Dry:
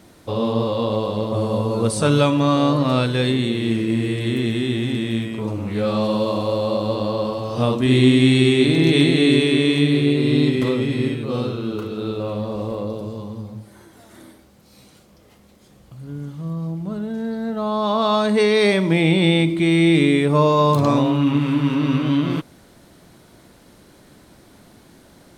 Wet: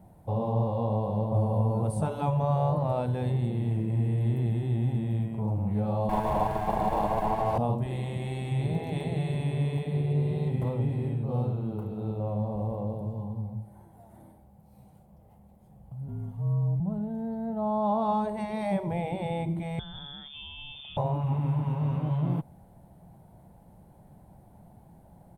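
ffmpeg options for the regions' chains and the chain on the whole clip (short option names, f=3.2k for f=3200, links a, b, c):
-filter_complex "[0:a]asettb=1/sr,asplit=3[a][b][c];[a]atrim=end=6.094[d];[b]atrim=start=6.09:end=7.58,asetpts=PTS-STARTPTS,afade=t=in:d=0.004:c=qsin,afade=t=out:st=1.486:d=0.004:c=qsin,highpass=270,lowpass=7.2k,asplit=2[e][f];[f]highpass=f=720:p=1,volume=34dB,asoftclip=type=tanh:threshold=-10.5dB[g];[e][g]amix=inputs=2:normalize=0,lowpass=f=3.1k:p=1,volume=-6dB[h];[c]atrim=start=7.576[i];[d][h]acrossfade=d=0.004:c1=hsin:c2=qsin[j];[j][i]acrossfade=d=0.004:c1=qsin:c2=hsin,asettb=1/sr,asplit=3[k][l][m];[k]atrim=end=16.084[n];[l]atrim=start=16.08:end=16.8,asetpts=PTS-STARTPTS,afade=t=in:d=0.004:c=qsin,afade=t=out:st=0.716:d=0.004:c=qsin,aecho=1:1:4.2:0.85,atrim=end_sample=31752,afreqshift=-34[o];[m]atrim=start=16.796[p];[n][o]acrossfade=d=0.004:c1=hsin:c2=qsin[q];[q][p]acrossfade=d=0.004:c1=qsin:c2=hsin,asettb=1/sr,asplit=3[r][s][t];[r]atrim=end=19.794[u];[s]atrim=start=19.79:end=20.97,asetpts=PTS-STARTPTS,afade=t=in:d=0.004:c=qsin,afade=t=out:st=1.176:d=0.004:c=qsin,lowpass=f=3.1k:t=q:w=0.5098,lowpass=f=3.1k:t=q:w=0.6013,lowpass=f=3.1k:t=q:w=0.9,lowpass=f=3.1k:t=q:w=2.563,afreqshift=-3700,acrossover=split=400|3000[v][w][x];[w]acompressor=threshold=-32dB:ratio=5:attack=3.2:release=140:knee=2.83:detection=peak[y];[v][y][x]amix=inputs=3:normalize=0[z];[t]atrim=start=20.966[aa];[u][z]acrossfade=d=0.004:c1=hsin:c2=qsin[ab];[ab][aa]acrossfade=d=0.004:c1=qsin:c2=hsin,equalizer=f=5.7k:w=0.79:g=-10,afftfilt=real='re*lt(hypot(re,im),0.891)':imag='im*lt(hypot(re,im),0.891)':win_size=1024:overlap=0.75,firequalizer=gain_entry='entry(180,0);entry(260,-13);entry(390,-13);entry(810,1);entry(1200,-18);entry(3800,-21);entry(10000,-10)':delay=0.05:min_phase=1"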